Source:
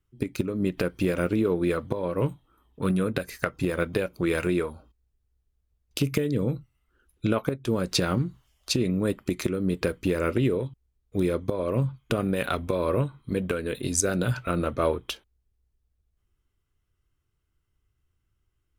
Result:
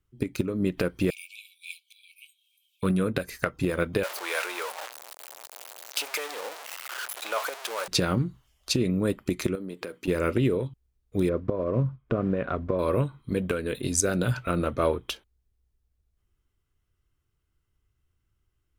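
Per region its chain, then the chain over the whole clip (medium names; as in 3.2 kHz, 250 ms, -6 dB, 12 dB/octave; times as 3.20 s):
1.10–2.83 s: brick-wall FIR high-pass 2.2 kHz + upward compressor, threshold -58 dBFS
4.03–7.88 s: jump at every zero crossing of -26.5 dBFS + high-pass 620 Hz 24 dB/octave
9.55–10.08 s: high-pass 240 Hz + compression 4:1, threshold -33 dBFS
11.29–12.79 s: block-companded coder 5-bit + low-pass 1.3 kHz + band-stop 840 Hz, Q 6.4
whole clip: none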